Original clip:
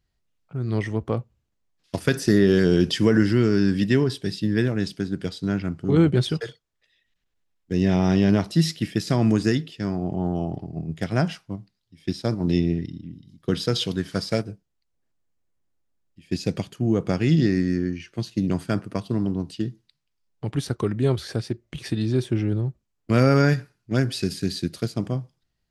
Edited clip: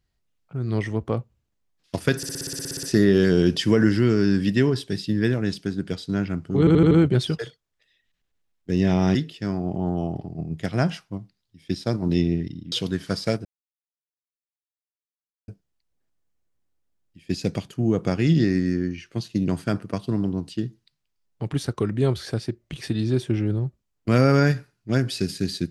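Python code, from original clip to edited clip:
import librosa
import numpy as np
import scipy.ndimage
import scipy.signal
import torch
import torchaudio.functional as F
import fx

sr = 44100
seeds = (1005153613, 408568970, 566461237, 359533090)

y = fx.edit(x, sr, fx.stutter(start_s=2.17, slice_s=0.06, count=12),
    fx.stutter(start_s=5.93, slice_s=0.08, count=5),
    fx.cut(start_s=8.17, length_s=1.36),
    fx.cut(start_s=13.1, length_s=0.67),
    fx.insert_silence(at_s=14.5, length_s=2.03), tone=tone)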